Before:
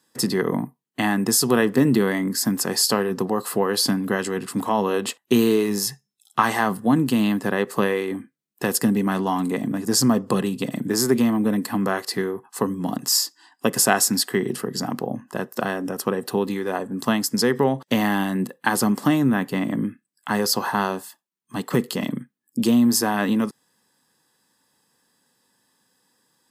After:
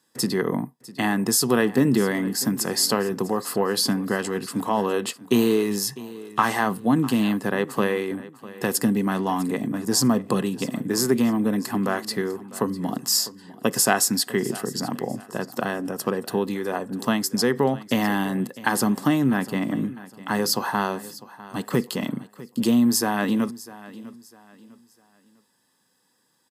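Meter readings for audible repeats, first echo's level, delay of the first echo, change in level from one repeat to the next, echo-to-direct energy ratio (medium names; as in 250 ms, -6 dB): 2, -18.0 dB, 651 ms, -9.5 dB, -17.5 dB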